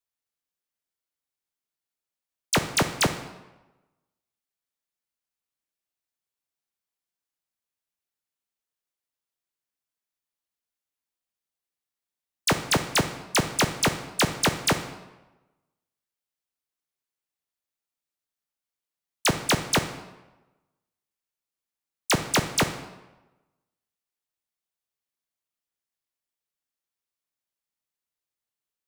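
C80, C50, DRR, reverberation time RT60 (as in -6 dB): 12.5 dB, 10.0 dB, 8.5 dB, 1.1 s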